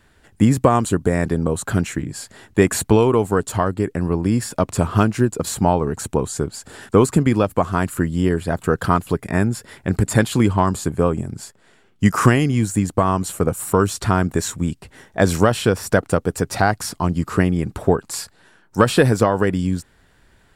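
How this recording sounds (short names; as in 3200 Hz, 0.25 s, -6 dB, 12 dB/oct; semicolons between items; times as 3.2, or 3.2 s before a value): noise floor -56 dBFS; spectral tilt -6.0 dB/oct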